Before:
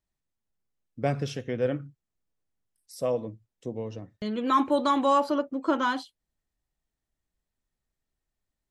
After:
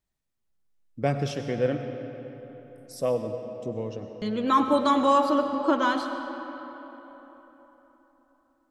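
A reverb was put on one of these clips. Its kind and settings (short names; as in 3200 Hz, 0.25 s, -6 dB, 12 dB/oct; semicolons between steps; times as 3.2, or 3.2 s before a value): digital reverb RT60 4 s, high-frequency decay 0.6×, pre-delay 60 ms, DRR 6.5 dB; gain +1.5 dB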